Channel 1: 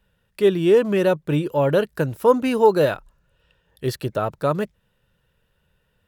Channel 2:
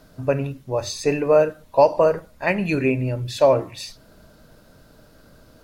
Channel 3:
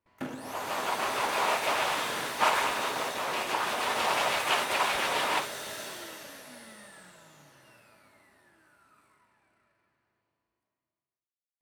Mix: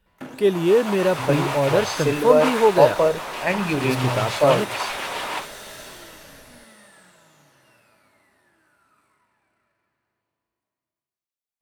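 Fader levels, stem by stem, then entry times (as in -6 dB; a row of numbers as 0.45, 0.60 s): -1.5, -1.5, 0.0 dB; 0.00, 1.00, 0.00 s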